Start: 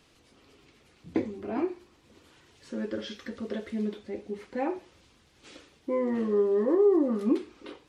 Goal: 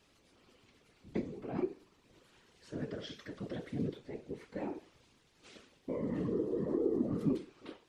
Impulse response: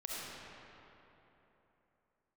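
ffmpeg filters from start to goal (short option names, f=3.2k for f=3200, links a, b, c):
-filter_complex "[0:a]afftfilt=real='hypot(re,im)*cos(2*PI*random(0))':imag='hypot(re,im)*sin(2*PI*random(1))':win_size=512:overlap=0.75,acrossover=split=380|3000[a][b][c];[b]acompressor=threshold=-42dB:ratio=6[d];[a][d][c]amix=inputs=3:normalize=0"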